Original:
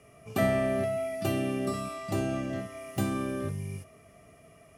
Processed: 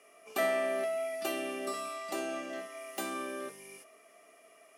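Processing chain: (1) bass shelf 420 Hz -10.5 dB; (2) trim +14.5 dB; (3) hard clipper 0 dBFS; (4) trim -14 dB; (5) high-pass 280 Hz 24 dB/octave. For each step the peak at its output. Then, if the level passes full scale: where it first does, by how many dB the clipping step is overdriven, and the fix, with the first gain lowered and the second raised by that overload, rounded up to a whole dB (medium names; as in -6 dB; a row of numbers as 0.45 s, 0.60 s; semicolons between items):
-18.0 dBFS, -3.5 dBFS, -3.5 dBFS, -17.5 dBFS, -18.5 dBFS; nothing clips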